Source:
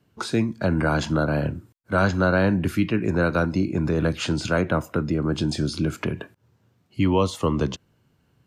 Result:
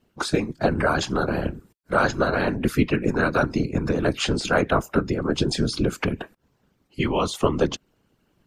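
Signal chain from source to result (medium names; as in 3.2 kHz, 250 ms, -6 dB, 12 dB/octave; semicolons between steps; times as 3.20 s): harmonic-percussive split harmonic -13 dB; whisper effect; trim +4.5 dB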